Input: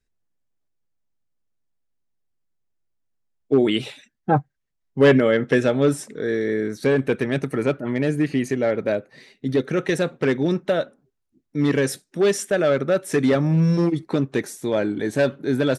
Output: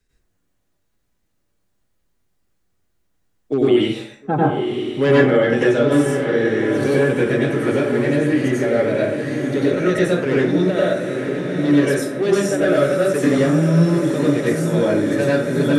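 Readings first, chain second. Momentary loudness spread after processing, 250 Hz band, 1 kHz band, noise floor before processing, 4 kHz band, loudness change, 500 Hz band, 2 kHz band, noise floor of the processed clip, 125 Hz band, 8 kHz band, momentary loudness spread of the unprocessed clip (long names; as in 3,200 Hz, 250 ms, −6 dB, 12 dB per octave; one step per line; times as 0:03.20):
6 LU, +4.5 dB, +3.5 dB, −76 dBFS, +2.5 dB, +4.0 dB, +4.0 dB, +4.0 dB, −68 dBFS, +3.5 dB, +1.5 dB, 8 LU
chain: feedback delay with all-pass diffusion 952 ms, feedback 64%, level −9 dB
dense smooth reverb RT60 0.51 s, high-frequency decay 0.6×, pre-delay 80 ms, DRR −7 dB
multiband upward and downward compressor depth 40%
level −5 dB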